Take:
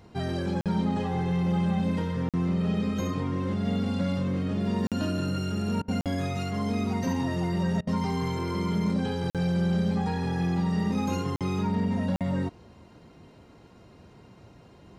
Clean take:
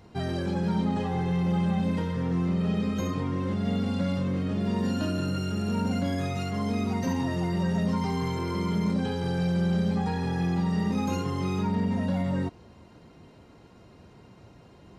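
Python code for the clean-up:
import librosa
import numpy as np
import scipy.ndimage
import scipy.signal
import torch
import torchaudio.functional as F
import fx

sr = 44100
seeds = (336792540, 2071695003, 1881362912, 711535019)

y = fx.fix_interpolate(x, sr, at_s=(0.61, 2.29, 4.87, 6.01, 9.3, 11.36, 12.16), length_ms=47.0)
y = fx.fix_interpolate(y, sr, at_s=(5.82, 7.81), length_ms=60.0)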